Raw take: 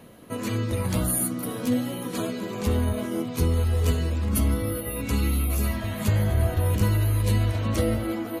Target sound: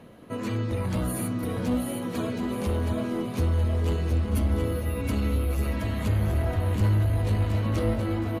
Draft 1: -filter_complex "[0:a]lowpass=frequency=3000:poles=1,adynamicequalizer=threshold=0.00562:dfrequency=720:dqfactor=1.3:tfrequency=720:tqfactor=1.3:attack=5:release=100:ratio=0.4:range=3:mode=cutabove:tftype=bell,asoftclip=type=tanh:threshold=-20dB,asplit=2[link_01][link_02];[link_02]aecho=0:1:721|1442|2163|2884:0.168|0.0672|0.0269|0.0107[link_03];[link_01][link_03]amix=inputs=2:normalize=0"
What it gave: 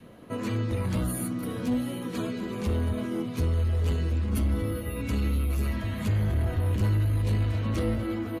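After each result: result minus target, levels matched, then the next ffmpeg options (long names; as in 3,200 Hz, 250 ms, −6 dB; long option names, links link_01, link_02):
echo-to-direct −10 dB; 1,000 Hz band −2.5 dB
-filter_complex "[0:a]lowpass=frequency=3000:poles=1,adynamicequalizer=threshold=0.00562:dfrequency=720:dqfactor=1.3:tfrequency=720:tqfactor=1.3:attack=5:release=100:ratio=0.4:range=3:mode=cutabove:tftype=bell,asoftclip=type=tanh:threshold=-20dB,asplit=2[link_01][link_02];[link_02]aecho=0:1:721|1442|2163|2884|3605:0.531|0.212|0.0849|0.034|0.0136[link_03];[link_01][link_03]amix=inputs=2:normalize=0"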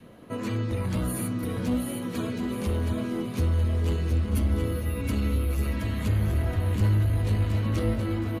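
1,000 Hz band −3.0 dB
-filter_complex "[0:a]lowpass=frequency=3000:poles=1,asoftclip=type=tanh:threshold=-20dB,asplit=2[link_01][link_02];[link_02]aecho=0:1:721|1442|2163|2884|3605:0.531|0.212|0.0849|0.034|0.0136[link_03];[link_01][link_03]amix=inputs=2:normalize=0"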